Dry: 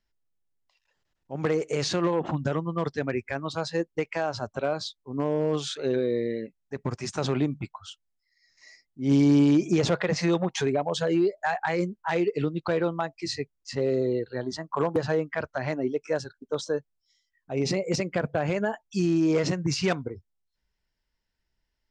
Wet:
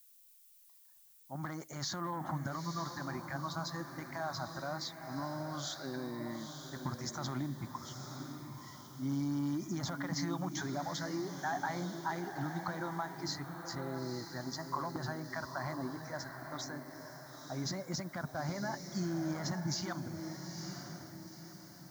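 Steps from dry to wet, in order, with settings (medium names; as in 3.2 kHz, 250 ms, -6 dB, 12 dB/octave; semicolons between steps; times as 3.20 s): elliptic low-pass 6.9 kHz; bass shelf 150 Hz -7.5 dB; peak limiter -22.5 dBFS, peak gain reduction 9.5 dB; static phaser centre 1.1 kHz, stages 4; echo that smears into a reverb 922 ms, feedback 42%, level -6.5 dB; added noise violet -61 dBFS; trim -1 dB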